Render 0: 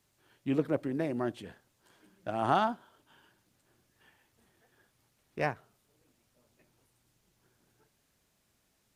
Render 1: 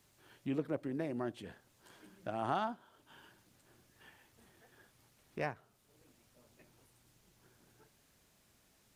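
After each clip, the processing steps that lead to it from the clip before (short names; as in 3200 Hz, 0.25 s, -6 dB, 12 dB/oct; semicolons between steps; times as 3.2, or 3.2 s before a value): compressor 1.5:1, threshold -56 dBFS, peak gain reduction 12.5 dB; gain +4 dB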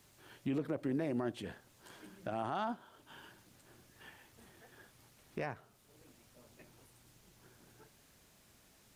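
limiter -31 dBFS, peak gain reduction 10.5 dB; gain +4.5 dB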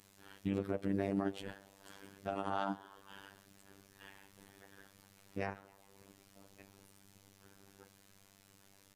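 ring modulator 50 Hz; frequency-shifting echo 0.136 s, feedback 64%, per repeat +82 Hz, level -23 dB; robotiser 98.3 Hz; gain +5.5 dB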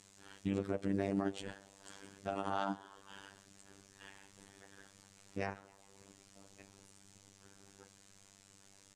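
synth low-pass 7600 Hz, resonance Q 2.3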